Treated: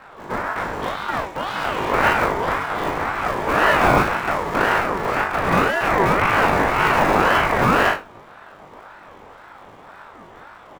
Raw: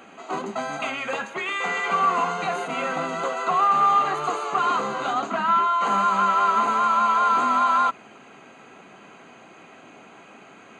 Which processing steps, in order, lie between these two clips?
sub-harmonics by changed cycles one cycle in 2, inverted
double-tracking delay 37 ms −3 dB
in parallel at −11 dB: sample-and-hold swept by an LFO 41×, swing 60% 0.33 Hz
on the sum: tilt shelving filter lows +9 dB, about 710 Hz
on a send: flutter between parallel walls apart 3.5 metres, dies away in 0.26 s
on the sum: ring modulator whose carrier an LFO sweeps 920 Hz, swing 30%, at 1.9 Hz
level +1 dB

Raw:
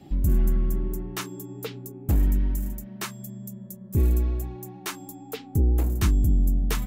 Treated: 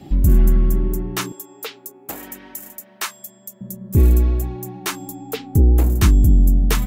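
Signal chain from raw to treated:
0:01.32–0:03.61: high-pass filter 660 Hz 12 dB per octave
level +8 dB

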